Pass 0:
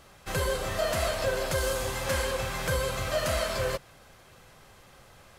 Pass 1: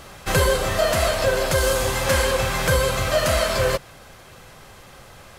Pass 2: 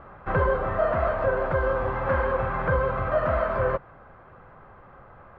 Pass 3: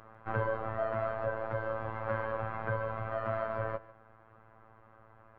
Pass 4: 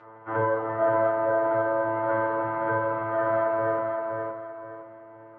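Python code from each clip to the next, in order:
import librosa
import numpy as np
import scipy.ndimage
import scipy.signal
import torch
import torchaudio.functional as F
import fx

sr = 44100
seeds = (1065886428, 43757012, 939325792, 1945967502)

y1 = fx.rider(x, sr, range_db=10, speed_s=0.5)
y1 = F.gain(torch.from_numpy(y1), 9.0).numpy()
y2 = fx.ladder_lowpass(y1, sr, hz=1600.0, resonance_pct=35)
y2 = F.gain(torch.from_numpy(y2), 3.0).numpy()
y3 = fx.robotise(y2, sr, hz=111.0)
y3 = y3 + 10.0 ** (-19.5 / 20.0) * np.pad(y3, (int(147 * sr / 1000.0), 0))[:len(y3)]
y3 = fx.rider(y3, sr, range_db=10, speed_s=2.0)
y3 = F.gain(torch.from_numpy(y3), -7.5).numpy()
y4 = fx.bandpass_edges(y3, sr, low_hz=170.0, high_hz=2300.0)
y4 = fx.echo_feedback(y4, sr, ms=519, feedback_pct=33, wet_db=-4.5)
y4 = fx.rev_fdn(y4, sr, rt60_s=0.31, lf_ratio=0.8, hf_ratio=0.6, size_ms=20.0, drr_db=-6.5)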